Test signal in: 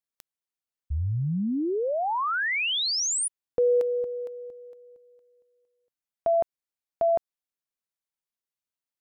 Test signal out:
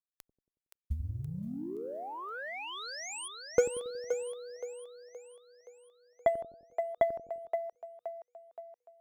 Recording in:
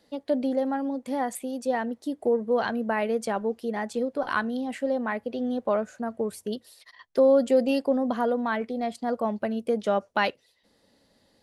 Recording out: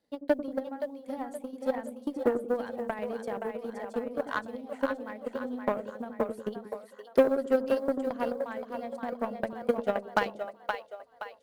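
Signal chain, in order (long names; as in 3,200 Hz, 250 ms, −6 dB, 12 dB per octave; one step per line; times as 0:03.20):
one scale factor per block 7 bits
parametric band 4,900 Hz −3.5 dB 2.1 octaves
transient designer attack +11 dB, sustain −1 dB
echo with a time of its own for lows and highs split 460 Hz, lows 92 ms, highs 522 ms, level −4 dB
harmonic generator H 7 −23 dB, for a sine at −0.5 dBFS
level −8.5 dB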